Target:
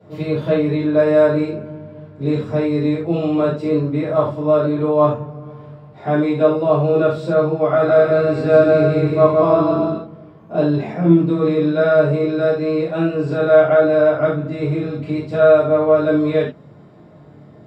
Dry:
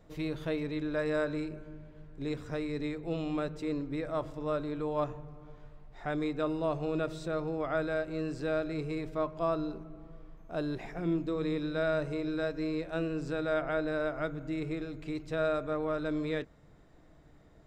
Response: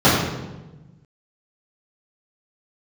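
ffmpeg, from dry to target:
-filter_complex "[0:a]highpass=150,asettb=1/sr,asplit=3[link_01][link_02][link_03];[link_01]atrim=end=7.674[link_04];[link_02]atrim=start=7.67:end=9.97,asetpts=PTS-STARTPTS,afade=type=in:duration=0.004:curve=qsin,afade=type=out:start_time=2.296:duration=0.004:curve=qsin,aecho=1:1:160|280|370|437.5|488.1:0.631|0.398|0.251|0.158|0.1,atrim=end_sample=101430[link_05];[link_03]atrim=start=9.966[link_06];[link_04][link_05]acrossfade=duration=0.004:curve1=hsin:curve2=qsin[link_07];[link_07][link_06]acrossfade=duration=0.004:curve1=qsin:curve2=hsin[link_08];[1:a]atrim=start_sample=2205,atrim=end_sample=3528,asetrate=34398,aresample=44100[link_09];[link_08][link_09]afir=irnorm=-1:irlink=0,volume=-12dB"

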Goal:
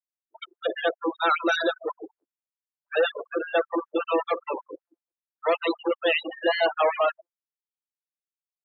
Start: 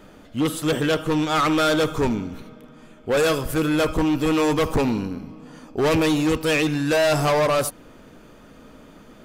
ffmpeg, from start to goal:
ffmpeg -i in.wav -filter_complex "[0:a]asplit=2[link_01][link_02];[link_02]adelay=252,lowpass=frequency=1400:poles=1,volume=-15.5dB,asplit=2[link_03][link_04];[link_04]adelay=252,lowpass=frequency=1400:poles=1,volume=0.46,asplit=2[link_05][link_06];[link_06]adelay=252,lowpass=frequency=1400:poles=1,volume=0.46,asplit=2[link_07][link_08];[link_08]adelay=252,lowpass=frequency=1400:poles=1,volume=0.46[link_09];[link_01][link_03][link_05][link_07][link_09]amix=inputs=5:normalize=0,asetrate=47187,aresample=44100,aresample=16000,acrusher=bits=5:dc=4:mix=0:aa=0.000001,aresample=44100,afftfilt=real='re*gte(hypot(re,im),0.126)':imag='im*gte(hypot(re,im),0.126)':win_size=1024:overlap=0.75,afftfilt=real='re*gte(b*sr/1024,300*pow(1600/300,0.5+0.5*sin(2*PI*5.2*pts/sr)))':imag='im*gte(b*sr/1024,300*pow(1600/300,0.5+0.5*sin(2*PI*5.2*pts/sr)))':win_size=1024:overlap=0.75" out.wav

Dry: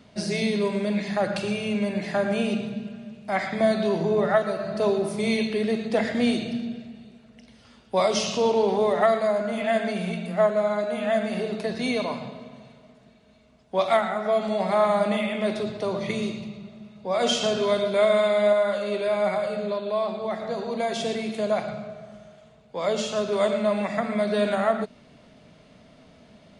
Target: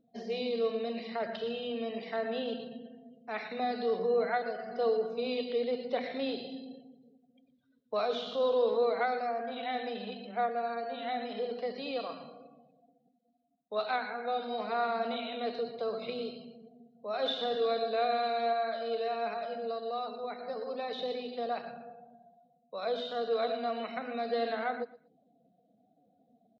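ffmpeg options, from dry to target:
ffmpeg -i in.wav -filter_complex "[0:a]afftdn=noise_reduction=30:noise_floor=-46,acrossover=split=3200[link_01][link_02];[link_02]acompressor=threshold=-45dB:ratio=4:attack=1:release=60[link_03];[link_01][link_03]amix=inputs=2:normalize=0,asetrate=49501,aresample=44100,atempo=0.890899,highpass=260,equalizer=frequency=320:width_type=q:width=4:gain=-10,equalizer=frequency=460:width_type=q:width=4:gain=7,equalizer=frequency=850:width_type=q:width=4:gain=-8,equalizer=frequency=2400:width_type=q:width=4:gain=-5,equalizer=frequency=3800:width_type=q:width=4:gain=9,lowpass=frequency=4500:width=0.5412,lowpass=frequency=4500:width=1.3066,aecho=1:1:118|236:0.112|0.0281,volume=-8.5dB" out.wav

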